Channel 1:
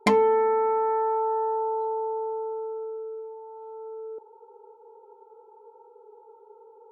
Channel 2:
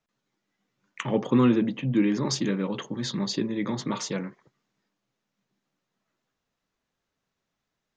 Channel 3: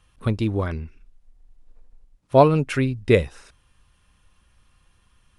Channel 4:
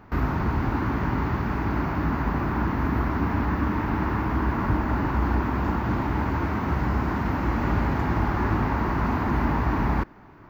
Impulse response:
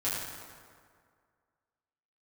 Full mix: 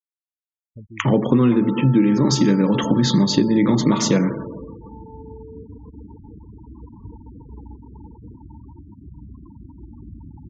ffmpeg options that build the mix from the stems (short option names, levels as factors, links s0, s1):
-filter_complex "[0:a]adelay=1450,volume=0.891,asplit=2[s0][s1];[s1]volume=0.0891[s2];[1:a]dynaudnorm=f=130:g=5:m=6.31,lowshelf=f=440:g=7.5,volume=0.75,asplit=3[s3][s4][s5];[s4]volume=0.178[s6];[2:a]adelay=500,volume=0.141[s7];[3:a]acrossover=split=270[s8][s9];[s9]acompressor=threshold=0.0447:ratio=5[s10];[s8][s10]amix=inputs=2:normalize=0,adelay=2350,volume=0.178,asplit=2[s11][s12];[s12]volume=0.106[s13];[s5]apad=whole_len=566587[s14];[s11][s14]sidechaincompress=threshold=0.0794:ratio=3:attack=6.9:release=491[s15];[s0][s7]amix=inputs=2:normalize=0,lowpass=f=2200:p=1,acompressor=threshold=0.0282:ratio=2,volume=1[s16];[4:a]atrim=start_sample=2205[s17];[s2][s6][s13]amix=inputs=3:normalize=0[s18];[s18][s17]afir=irnorm=-1:irlink=0[s19];[s3][s15][s16][s19]amix=inputs=4:normalize=0,afftfilt=real='re*gte(hypot(re,im),0.0355)':imag='im*gte(hypot(re,im),0.0355)':win_size=1024:overlap=0.75,acompressor=threshold=0.224:ratio=5"